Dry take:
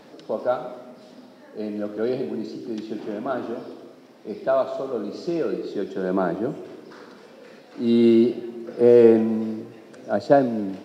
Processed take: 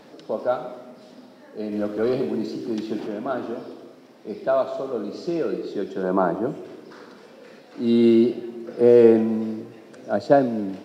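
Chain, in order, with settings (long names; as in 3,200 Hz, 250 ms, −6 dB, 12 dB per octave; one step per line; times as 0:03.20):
0:01.72–0:03.07: leveller curve on the samples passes 1
0:06.03–0:06.47: octave-band graphic EQ 1,000/2,000/4,000 Hz +8/−4/−4 dB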